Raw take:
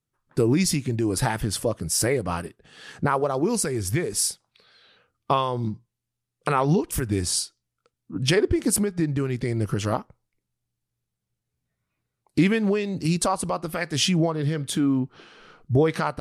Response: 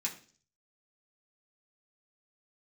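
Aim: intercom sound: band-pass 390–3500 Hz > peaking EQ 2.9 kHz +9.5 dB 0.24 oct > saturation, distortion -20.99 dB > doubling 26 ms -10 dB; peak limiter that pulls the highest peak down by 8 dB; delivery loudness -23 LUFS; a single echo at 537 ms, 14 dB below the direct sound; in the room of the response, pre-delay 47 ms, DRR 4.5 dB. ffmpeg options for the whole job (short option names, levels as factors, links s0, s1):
-filter_complex "[0:a]alimiter=limit=0.15:level=0:latency=1,aecho=1:1:537:0.2,asplit=2[s0][s1];[1:a]atrim=start_sample=2205,adelay=47[s2];[s1][s2]afir=irnorm=-1:irlink=0,volume=0.473[s3];[s0][s3]amix=inputs=2:normalize=0,highpass=390,lowpass=3500,equalizer=f=2900:t=o:w=0.24:g=9.5,asoftclip=threshold=0.126,asplit=2[s4][s5];[s5]adelay=26,volume=0.316[s6];[s4][s6]amix=inputs=2:normalize=0,volume=2.51"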